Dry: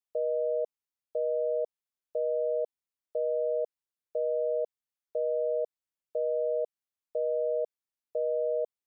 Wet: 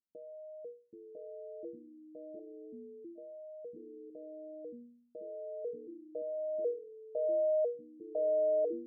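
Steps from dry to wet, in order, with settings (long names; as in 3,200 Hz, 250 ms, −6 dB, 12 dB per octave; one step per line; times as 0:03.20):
mains-hum notches 60/120/180/240/300/360/420/480 Hz
brickwall limiter −33.5 dBFS, peak gain reduction 10 dB
0:02.39–0:03.18: stiff-string resonator 300 Hz, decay 0.49 s, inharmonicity 0.03
low-pass filter sweep 290 Hz → 680 Hz, 0:04.66–0:07.94
notch comb filter 390 Hz
delay with pitch and tempo change per echo 717 ms, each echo −6 semitones, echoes 2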